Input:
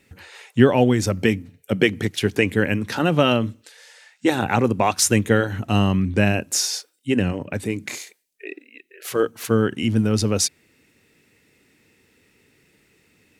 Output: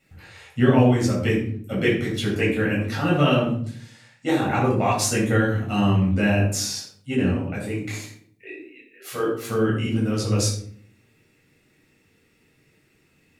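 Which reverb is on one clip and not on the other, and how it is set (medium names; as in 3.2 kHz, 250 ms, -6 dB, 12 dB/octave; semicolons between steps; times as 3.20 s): simulated room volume 790 m³, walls furnished, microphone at 6.9 m; trim -11.5 dB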